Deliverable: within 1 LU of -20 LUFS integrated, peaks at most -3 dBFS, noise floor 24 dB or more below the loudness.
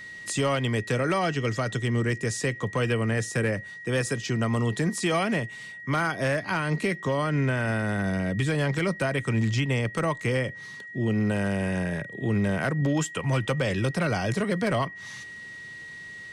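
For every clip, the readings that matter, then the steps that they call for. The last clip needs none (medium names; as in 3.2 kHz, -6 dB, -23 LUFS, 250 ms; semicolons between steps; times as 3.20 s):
clipped samples 0.4%; clipping level -17.5 dBFS; steady tone 1.9 kHz; tone level -39 dBFS; loudness -27.0 LUFS; peak level -17.5 dBFS; loudness target -20.0 LUFS
-> clip repair -17.5 dBFS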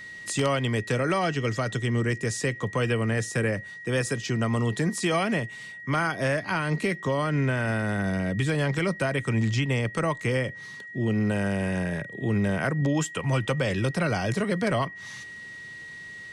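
clipped samples 0.0%; steady tone 1.9 kHz; tone level -39 dBFS
-> band-stop 1.9 kHz, Q 30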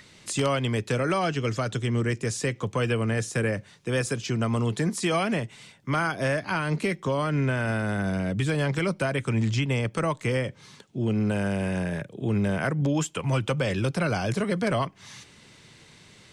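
steady tone not found; loudness -27.0 LUFS; peak level -8.5 dBFS; loudness target -20.0 LUFS
-> trim +7 dB; peak limiter -3 dBFS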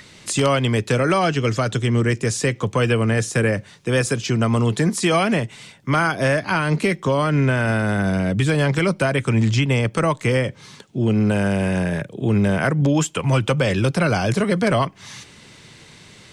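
loudness -20.0 LUFS; peak level -3.0 dBFS; noise floor -47 dBFS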